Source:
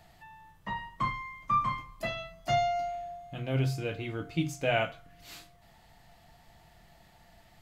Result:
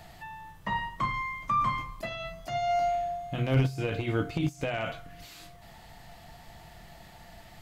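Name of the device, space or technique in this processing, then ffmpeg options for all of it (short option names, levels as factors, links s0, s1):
de-esser from a sidechain: -filter_complex "[0:a]asplit=2[s0][s1];[s1]highpass=6000,apad=whole_len=335927[s2];[s0][s2]sidechaincompress=threshold=0.00112:ratio=16:attack=0.85:release=20,volume=2.66"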